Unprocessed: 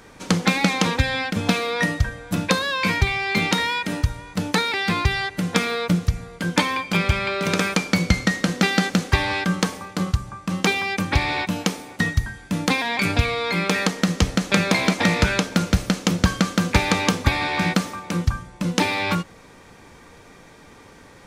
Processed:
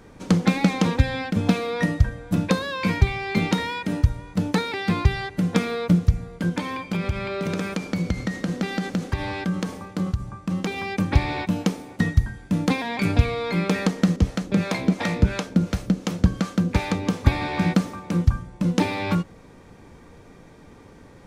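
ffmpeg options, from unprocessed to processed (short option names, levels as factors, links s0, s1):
-filter_complex "[0:a]asettb=1/sr,asplit=3[s0][s1][s2];[s0]atrim=end=6.494[s3];[s1]atrim=start=6.49:end=10.78,asetpts=PTS-STARTPTS,afade=t=in:d=0.004:c=qsin,afade=t=out:st=4.286:d=0.004:c=qsin,acompressor=threshold=0.0794:ratio=3:attack=3.2:release=140:knee=1:detection=peak[s4];[s2]atrim=start=10.776[s5];[s3][s4]acrossfade=d=0.004:c1=hsin:c2=qsin[s6];[s6][s5]acrossfade=d=0.004:c1=qsin:c2=hsin,asettb=1/sr,asplit=3[s7][s8][s9];[s7]atrim=end=14.164[s10];[s8]atrim=start=14.16:end=17.23,asetpts=PTS-STARTPTS,afade=t=in:d=0.004:c=qsin,afade=t=out:st=3.066:d=0.004:c=qsin,acrossover=split=510[s11][s12];[s11]aeval=exprs='val(0)*(1-0.7/2+0.7/2*cos(2*PI*2.8*n/s))':c=same[s13];[s12]aeval=exprs='val(0)*(1-0.7/2-0.7/2*cos(2*PI*2.8*n/s))':c=same[s14];[s13][s14]amix=inputs=2:normalize=0[s15];[s9]atrim=start=17.226[s16];[s10][s15]acrossfade=d=0.004:c1=hsin:c2=qsin[s17];[s17][s16]acrossfade=d=0.004:c1=qsin:c2=hsin,tiltshelf=f=690:g=5.5,volume=0.75"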